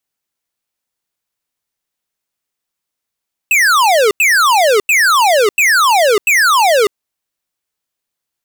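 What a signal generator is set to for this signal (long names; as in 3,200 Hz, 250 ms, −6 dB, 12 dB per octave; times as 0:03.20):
repeated falling chirps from 2,700 Hz, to 390 Hz, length 0.60 s square, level −10 dB, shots 5, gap 0.09 s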